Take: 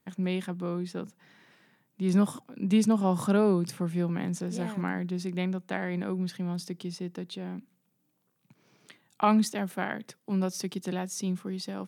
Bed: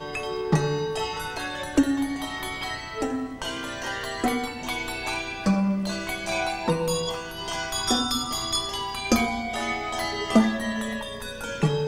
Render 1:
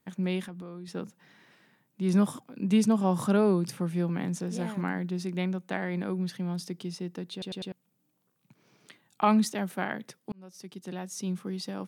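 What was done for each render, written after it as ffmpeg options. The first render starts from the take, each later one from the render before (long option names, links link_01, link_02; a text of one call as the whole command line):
ffmpeg -i in.wav -filter_complex "[0:a]asettb=1/sr,asplit=3[link_01][link_02][link_03];[link_01]atrim=end=0.454[link_04];[link_02]atrim=start=0.45:end=0.88,asetpts=PTS-STARTPTS,afade=type=in:duration=0.004:curve=qsin,afade=type=out:start_time=0.426:duration=0.004:curve=qsin,acompressor=threshold=-38dB:ratio=6:attack=3.2:release=140:knee=1:detection=peak[link_05];[link_03]atrim=start=0.876[link_06];[link_04][link_05]acrossfade=duration=0.004:curve1=hsin:curve2=qsin[link_07];[link_07][link_06]acrossfade=duration=0.004:curve1=qsin:curve2=hsin,asplit=6[link_08][link_09][link_10][link_11][link_12][link_13];[link_08]atrim=end=7.422[link_14];[link_09]atrim=start=7.318:end=7.422[link_15];[link_10]atrim=start=7.318:end=7.422[link_16];[link_11]atrim=start=7.318:end=7.422[link_17];[link_12]atrim=start=7.718:end=10.32,asetpts=PTS-STARTPTS,afade=type=out:start_time=2.598:duration=0.004:curve=hsin[link_18];[link_13]atrim=start=10.32,asetpts=PTS-STARTPTS,afade=type=in:duration=1.16[link_19];[link_14][link_15]acrossfade=duration=0.004:curve1=hsin:curve2=hsin[link_20];[link_20][link_16]acrossfade=duration=0.004:curve1=hsin:curve2=hsin[link_21];[link_21][link_17]acrossfade=duration=0.004:curve1=hsin:curve2=hsin[link_22];[link_18][link_19]concat=n=2:v=0:a=1[link_23];[link_22][link_23]acrossfade=duration=0.004:curve1=hsin:curve2=hsin" out.wav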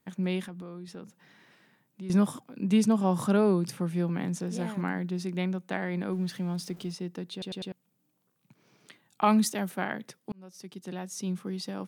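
ffmpeg -i in.wav -filter_complex "[0:a]asettb=1/sr,asplit=3[link_01][link_02][link_03];[link_01]atrim=end=0.854[link_04];[link_02]atrim=start=0.85:end=2.1,asetpts=PTS-STARTPTS,afade=type=in:duration=0.004:curve=qsin,afade=type=out:start_time=1.246:duration=0.004:curve=qsin,acompressor=threshold=-44dB:ratio=2:attack=3.2:release=140:knee=1:detection=peak[link_05];[link_03]atrim=start=2.096[link_06];[link_04][link_05]acrossfade=duration=0.004:curve1=hsin:curve2=qsin[link_07];[link_07][link_06]acrossfade=duration=0.004:curve1=qsin:curve2=hsin,asettb=1/sr,asplit=3[link_08][link_09][link_10];[link_08]atrim=end=6.124[link_11];[link_09]atrim=start=6.12:end=6.92,asetpts=PTS-STARTPTS,afade=type=in:duration=0.004:curve=qsin,afade=type=out:start_time=0.796:duration=0.004:curve=qsin,aeval=exprs='val(0)+0.5*0.00355*sgn(val(0))':channel_layout=same[link_12];[link_10]atrim=start=6.916[link_13];[link_11][link_12]acrossfade=duration=0.004:curve1=hsin:curve2=qsin[link_14];[link_14][link_13]acrossfade=duration=0.004:curve1=qsin:curve2=hsin,asettb=1/sr,asplit=3[link_15][link_16][link_17];[link_15]atrim=end=9.244[link_18];[link_16]atrim=start=9.24:end=9.7,asetpts=PTS-STARTPTS,afade=type=in:duration=0.004:curve=qsin,afade=type=out:start_time=0.456:duration=0.004:curve=qsin,highshelf=frequency=7600:gain=8.5[link_19];[link_17]atrim=start=9.696[link_20];[link_18][link_19]acrossfade=duration=0.004:curve1=hsin:curve2=qsin[link_21];[link_21][link_20]acrossfade=duration=0.004:curve1=qsin:curve2=hsin" out.wav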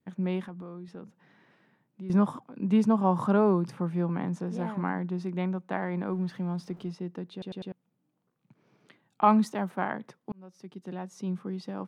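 ffmpeg -i in.wav -af "lowpass=frequency=1400:poles=1,adynamicequalizer=threshold=0.00398:dfrequency=1000:dqfactor=1.6:tfrequency=1000:tqfactor=1.6:attack=5:release=100:ratio=0.375:range=4:mode=boostabove:tftype=bell" out.wav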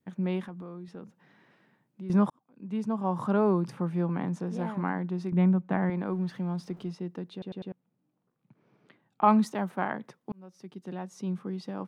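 ffmpeg -i in.wav -filter_complex "[0:a]asettb=1/sr,asplit=3[link_01][link_02][link_03];[link_01]atrim=end=5.324[link_04];[link_02]atrim=start=5.32:end=5.9,asetpts=PTS-STARTPTS,afade=type=in:duration=0.004:curve=qsin,afade=type=out:start_time=0.576:duration=0.004:curve=qsin,bass=frequency=250:gain=11,treble=frequency=4000:gain=-11[link_05];[link_03]atrim=start=5.896[link_06];[link_04][link_05]acrossfade=duration=0.004:curve1=hsin:curve2=qsin[link_07];[link_07][link_06]acrossfade=duration=0.004:curve1=qsin:curve2=hsin,asettb=1/sr,asplit=3[link_08][link_09][link_10];[link_08]atrim=end=7.394[link_11];[link_09]atrim=start=7.39:end=9.28,asetpts=PTS-STARTPTS,afade=type=in:duration=0.004:curve=qsin,afade=type=out:start_time=1.886:duration=0.004:curve=qsin,lowpass=frequency=2300:poles=1[link_12];[link_10]atrim=start=9.276[link_13];[link_11][link_12]acrossfade=duration=0.004:curve1=hsin:curve2=qsin[link_14];[link_14][link_13]acrossfade=duration=0.004:curve1=qsin:curve2=hsin,asplit=2[link_15][link_16];[link_15]atrim=end=2.3,asetpts=PTS-STARTPTS,afade=type=out:start_time=2.296:duration=0.004:curve=hsin[link_17];[link_16]atrim=start=2.3,asetpts=PTS-STARTPTS,afade=type=in:duration=1.35[link_18];[link_17][link_18]concat=n=2:v=0:a=1" out.wav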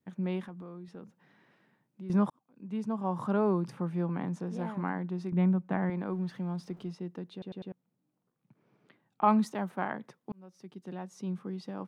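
ffmpeg -i in.wav -af "volume=-3dB" out.wav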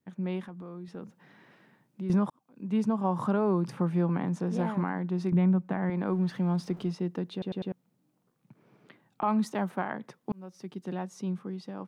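ffmpeg -i in.wav -af "dynaudnorm=framelen=140:gausssize=13:maxgain=7.5dB,alimiter=limit=-17.5dB:level=0:latency=1:release=468" out.wav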